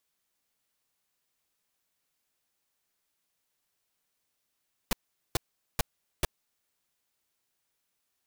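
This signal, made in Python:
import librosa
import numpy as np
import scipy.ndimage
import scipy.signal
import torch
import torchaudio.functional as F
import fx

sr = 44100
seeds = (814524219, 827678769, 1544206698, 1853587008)

y = fx.noise_burst(sr, seeds[0], colour='pink', on_s=0.02, off_s=0.42, bursts=4, level_db=-25.0)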